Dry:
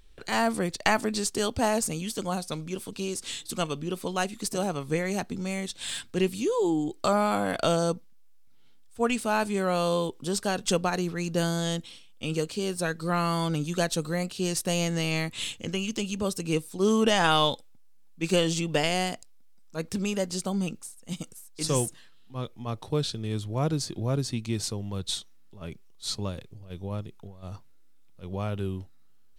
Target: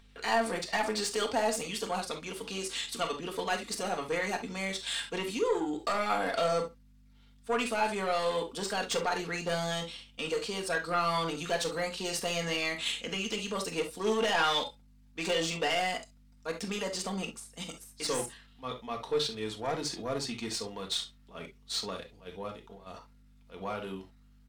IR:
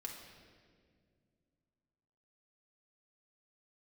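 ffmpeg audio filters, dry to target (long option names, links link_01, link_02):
-filter_complex "[0:a]highpass=frequency=260:poles=1,asoftclip=type=tanh:threshold=-24dB,asplit=2[link_01][link_02];[link_02]highpass=frequency=720:poles=1,volume=14dB,asoftclip=type=tanh:threshold=-11dB[link_03];[link_01][link_03]amix=inputs=2:normalize=0,lowpass=frequency=3500:poles=1,volume=-6dB,aecho=1:1:89:0.0668,aeval=exprs='val(0)+0.00224*(sin(2*PI*50*n/s)+sin(2*PI*2*50*n/s)/2+sin(2*PI*3*50*n/s)/3+sin(2*PI*4*50*n/s)/4+sin(2*PI*5*50*n/s)/5)':channel_layout=same[link_04];[1:a]atrim=start_sample=2205,atrim=end_sample=3969[link_05];[link_04][link_05]afir=irnorm=-1:irlink=0,atempo=1.2"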